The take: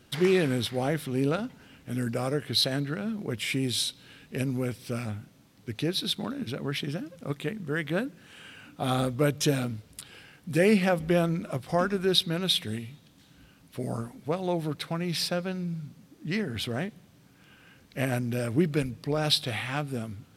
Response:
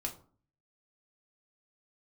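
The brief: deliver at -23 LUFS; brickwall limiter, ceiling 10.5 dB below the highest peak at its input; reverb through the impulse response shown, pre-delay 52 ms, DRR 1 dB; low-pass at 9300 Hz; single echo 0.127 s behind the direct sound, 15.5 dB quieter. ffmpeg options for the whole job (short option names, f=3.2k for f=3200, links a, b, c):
-filter_complex "[0:a]lowpass=9.3k,alimiter=limit=-18dB:level=0:latency=1,aecho=1:1:127:0.168,asplit=2[a][b];[1:a]atrim=start_sample=2205,adelay=52[c];[b][c]afir=irnorm=-1:irlink=0,volume=-1.5dB[d];[a][d]amix=inputs=2:normalize=0,volume=4.5dB"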